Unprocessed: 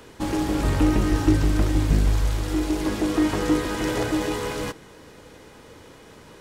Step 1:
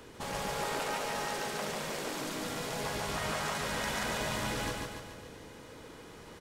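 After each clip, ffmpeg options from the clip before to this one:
-af "afftfilt=real='re*lt(hypot(re,im),0.178)':imag='im*lt(hypot(re,im),0.178)':win_size=1024:overlap=0.75,aecho=1:1:143|286|429|572|715|858|1001:0.708|0.375|0.199|0.105|0.0559|0.0296|0.0157,volume=-5dB"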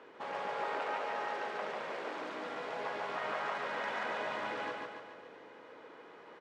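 -af "highpass=420,lowpass=2.1k"

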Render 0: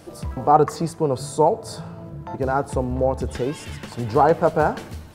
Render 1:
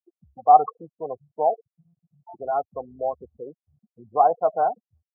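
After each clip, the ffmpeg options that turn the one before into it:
-filter_complex "[0:a]afftfilt=real='re*gte(hypot(re,im),0.158)':imag='im*gte(hypot(re,im),0.158)':win_size=1024:overlap=0.75,asplit=3[a][b][c];[a]bandpass=f=730:t=q:w=8,volume=0dB[d];[b]bandpass=f=1.09k:t=q:w=8,volume=-6dB[e];[c]bandpass=f=2.44k:t=q:w=8,volume=-9dB[f];[d][e][f]amix=inputs=3:normalize=0,volume=4.5dB"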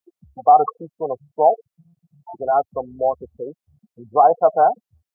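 -af "alimiter=level_in=9.5dB:limit=-1dB:release=50:level=0:latency=1,volume=-2.5dB"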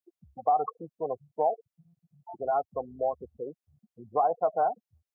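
-af "acompressor=threshold=-18dB:ratio=2,volume=-7dB"

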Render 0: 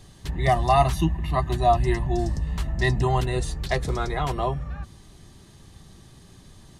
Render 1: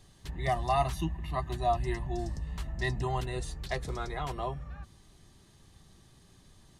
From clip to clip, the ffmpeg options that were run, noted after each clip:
-af "equalizer=f=150:w=0.31:g=-2.5,volume=-8dB"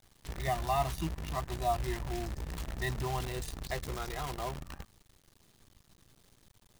-af "acrusher=bits=7:dc=4:mix=0:aa=0.000001,volume=-3dB"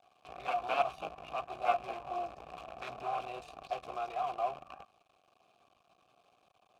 -filter_complex "[0:a]aeval=exprs='0.158*(cos(1*acos(clip(val(0)/0.158,-1,1)))-cos(1*PI/2))+0.0631*(cos(7*acos(clip(val(0)/0.158,-1,1)))-cos(7*PI/2))':c=same,asplit=3[a][b][c];[a]bandpass=f=730:t=q:w=8,volume=0dB[d];[b]bandpass=f=1.09k:t=q:w=8,volume=-6dB[e];[c]bandpass=f=2.44k:t=q:w=8,volume=-9dB[f];[d][e][f]amix=inputs=3:normalize=0,volume=8dB"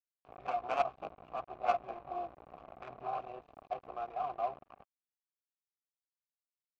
-af "aeval=exprs='sgn(val(0))*max(abs(val(0))-0.00237,0)':c=same,adynamicsmooth=sensitivity=2:basefreq=1.3k"

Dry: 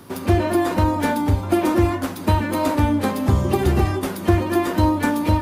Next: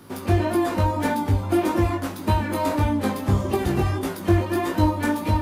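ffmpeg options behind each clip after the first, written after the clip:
-af "flanger=delay=18:depth=3.4:speed=1.7"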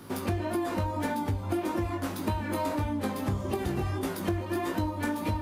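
-af "acompressor=threshold=-27dB:ratio=6"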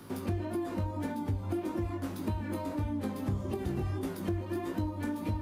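-filter_complex "[0:a]acrossover=split=430[a][b];[b]acompressor=threshold=-53dB:ratio=1.5[c];[a][c]amix=inputs=2:normalize=0,volume=-2dB"

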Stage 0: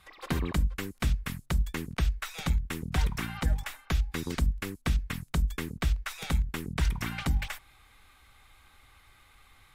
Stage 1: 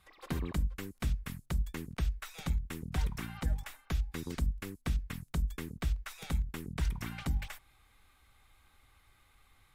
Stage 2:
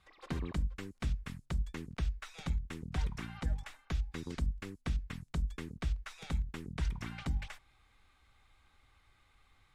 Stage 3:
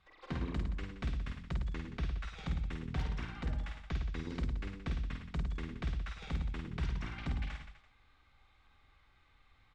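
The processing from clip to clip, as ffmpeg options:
-af "equalizer=f=2.3k:w=0.32:g=-3.5,volume=-5dB"
-af "lowpass=7.1k,volume=-2dB"
-af "lowpass=4.6k,aecho=1:1:50|107.5|173.6|249.7|337.1:0.631|0.398|0.251|0.158|0.1,aeval=exprs='0.0562*(abs(mod(val(0)/0.0562+3,4)-2)-1)':c=same,volume=-1.5dB"

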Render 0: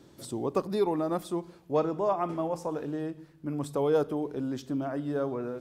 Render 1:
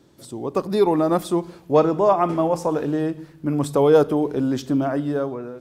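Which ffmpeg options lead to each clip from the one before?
-af "dynaudnorm=f=100:g=13:m=11dB"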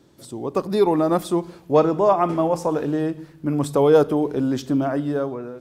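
-af anull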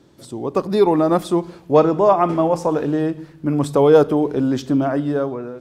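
-af "highshelf=f=9.6k:g=-8,volume=3dB"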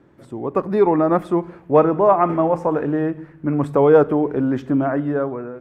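-af "highshelf=f=2.9k:t=q:w=1.5:g=-13.5,volume=-1dB"

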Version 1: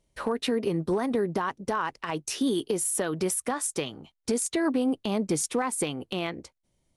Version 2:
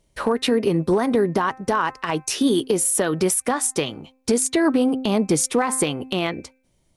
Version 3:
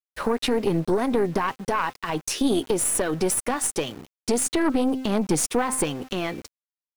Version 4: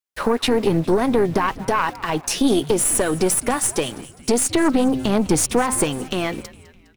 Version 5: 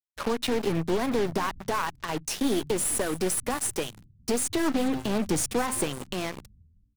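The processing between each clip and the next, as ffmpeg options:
-af "bandreject=f=260.3:t=h:w=4,bandreject=f=520.6:t=h:w=4,bandreject=f=780.9:t=h:w=4,bandreject=f=1.0412k:t=h:w=4,bandreject=f=1.3015k:t=h:w=4,bandreject=f=1.5618k:t=h:w=4,bandreject=f=1.8221k:t=h:w=4,bandreject=f=2.0824k:t=h:w=4,bandreject=f=2.3427k:t=h:w=4,bandreject=f=2.603k:t=h:w=4,volume=7.5dB"
-af "aeval=exprs='val(0)*gte(abs(val(0)),0.0126)':c=same,aeval=exprs='(tanh(4.47*val(0)+0.55)-tanh(0.55))/4.47':c=same"
-filter_complex "[0:a]asplit=5[a][b][c][d][e];[b]adelay=205,afreqshift=-130,volume=-18.5dB[f];[c]adelay=410,afreqshift=-260,volume=-24.2dB[g];[d]adelay=615,afreqshift=-390,volume=-29.9dB[h];[e]adelay=820,afreqshift=-520,volume=-35.5dB[i];[a][f][g][h][i]amix=inputs=5:normalize=0,volume=4.5dB"
-filter_complex "[0:a]acrossover=split=160[a][b];[a]asplit=2[c][d];[d]adelay=49,volume=-6dB[e];[c][e]amix=inputs=2:normalize=0[f];[b]acrusher=bits=3:mix=0:aa=0.5[g];[f][g]amix=inputs=2:normalize=0,volume=-8.5dB"

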